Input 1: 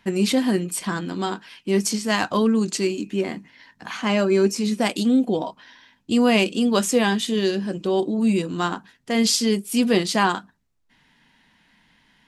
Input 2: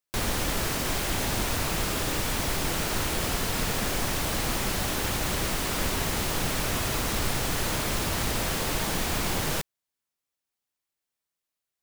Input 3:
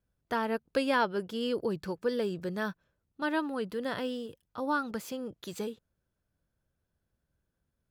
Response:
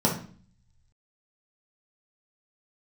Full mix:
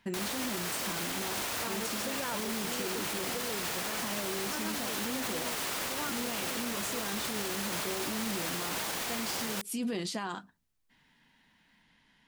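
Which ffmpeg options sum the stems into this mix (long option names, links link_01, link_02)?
-filter_complex "[0:a]alimiter=limit=-19.5dB:level=0:latency=1,volume=-7dB[link_01];[1:a]highpass=frequency=540:poles=1,volume=-0.5dB[link_02];[2:a]adelay=1300,volume=-5dB[link_03];[link_01][link_02][link_03]amix=inputs=3:normalize=0,alimiter=level_in=1dB:limit=-24dB:level=0:latency=1,volume=-1dB"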